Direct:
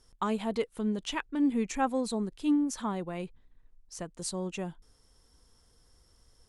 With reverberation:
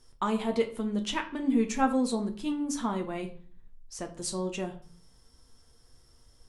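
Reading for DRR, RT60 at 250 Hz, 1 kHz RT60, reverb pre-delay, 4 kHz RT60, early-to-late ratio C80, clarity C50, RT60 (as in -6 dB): 3.5 dB, 0.60 s, 0.45 s, 8 ms, 0.40 s, 16.5 dB, 12.5 dB, 0.45 s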